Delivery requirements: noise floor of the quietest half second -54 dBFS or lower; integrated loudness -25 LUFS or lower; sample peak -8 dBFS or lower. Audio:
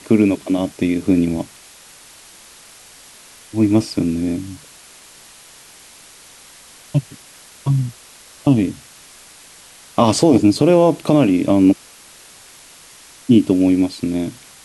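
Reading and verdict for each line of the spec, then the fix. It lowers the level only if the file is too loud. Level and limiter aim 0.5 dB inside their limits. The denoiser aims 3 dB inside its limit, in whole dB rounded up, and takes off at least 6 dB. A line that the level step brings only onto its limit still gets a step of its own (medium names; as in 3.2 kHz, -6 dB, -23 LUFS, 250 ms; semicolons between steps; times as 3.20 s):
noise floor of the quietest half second -44 dBFS: fail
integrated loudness -17.0 LUFS: fail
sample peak -2.0 dBFS: fail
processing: noise reduction 6 dB, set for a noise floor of -44 dBFS; trim -8.5 dB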